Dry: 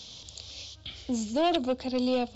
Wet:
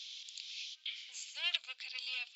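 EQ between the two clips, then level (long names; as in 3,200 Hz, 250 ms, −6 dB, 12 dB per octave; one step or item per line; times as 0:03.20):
four-pole ladder high-pass 2,000 Hz, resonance 50%
high-shelf EQ 5,700 Hz −5 dB
+6.0 dB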